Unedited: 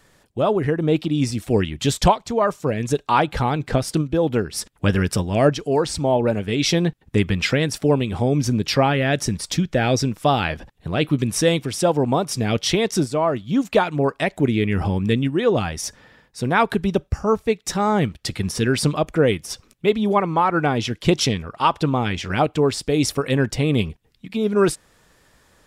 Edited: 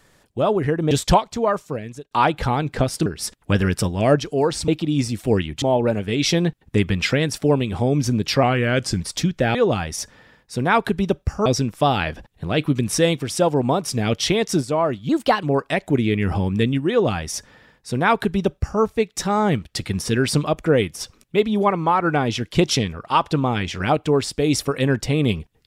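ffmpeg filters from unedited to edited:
-filter_complex "[0:a]asplit=12[a][b][c][d][e][f][g][h][i][j][k][l];[a]atrim=end=0.912[m];[b]atrim=start=1.848:end=3.05,asetpts=PTS-STARTPTS,afade=t=out:st=0.512:d=0.69[n];[c]atrim=start=3.05:end=4.002,asetpts=PTS-STARTPTS,afade=t=in:d=0.004:c=hsin[o];[d]atrim=start=4.398:end=6.022[p];[e]atrim=start=0.908:end=1.852[q];[f]atrim=start=6.018:end=8.834[r];[g]atrim=start=8.83:end=9.35,asetpts=PTS-STARTPTS,asetrate=39690,aresample=44100[s];[h]atrim=start=9.346:end=9.892[t];[i]atrim=start=15.398:end=17.312[u];[j]atrim=start=9.888:end=13.524[v];[k]atrim=start=13.52:end=13.93,asetpts=PTS-STARTPTS,asetrate=52479,aresample=44100,atrim=end_sample=15194,asetpts=PTS-STARTPTS[w];[l]atrim=start=13.926[x];[n][o]concat=n=2:v=0:a=1[y];[m][y]acrossfade=d=0.004:c1=hsin:c2=hsin[z];[z][p]acrossfade=d=0.004:c1=hsin:c2=hsin[aa];[aa][q]acrossfade=d=0.004:c1=hsin:c2=hsin[ab];[ab][r]acrossfade=d=0.004:c1=hsin:c2=hsin[ac];[ac][s]acrossfade=d=0.004:c1=hsin:c2=hsin[ad];[ad][t]acrossfade=d=0.004:c1=hsin:c2=hsin[ae];[ae][u]acrossfade=d=0.004:c1=hsin:c2=hsin[af];[af][v]acrossfade=d=0.004:c1=hsin:c2=hsin[ag];[ag][w]acrossfade=d=0.004:c1=hsin:c2=hsin[ah];[ah][x]acrossfade=d=0.004:c1=hsin:c2=hsin"

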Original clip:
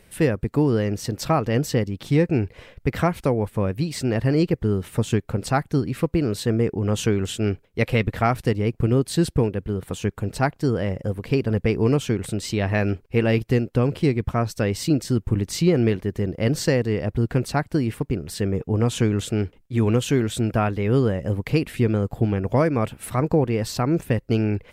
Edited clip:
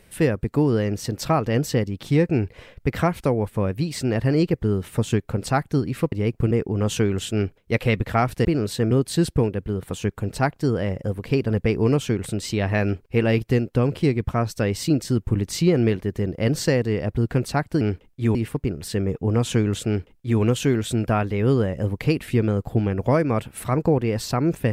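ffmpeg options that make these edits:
-filter_complex "[0:a]asplit=7[a][b][c][d][e][f][g];[a]atrim=end=6.122[h];[b]atrim=start=8.518:end=8.912[i];[c]atrim=start=6.578:end=8.522[j];[d]atrim=start=6.118:end=6.582[k];[e]atrim=start=8.908:end=17.812[l];[f]atrim=start=19.328:end=19.872[m];[g]atrim=start=17.808[n];[h][i]acrossfade=d=0.004:c1=hsin:c2=hsin[o];[o][j]acrossfade=d=0.004:c1=hsin:c2=hsin[p];[p][k]acrossfade=d=0.004:c1=hsin:c2=hsin[q];[q][l]acrossfade=d=0.004:c1=hsin:c2=hsin[r];[r][m]acrossfade=d=0.004:c1=hsin:c2=hsin[s];[s][n]acrossfade=d=0.004:c1=hsin:c2=hsin"

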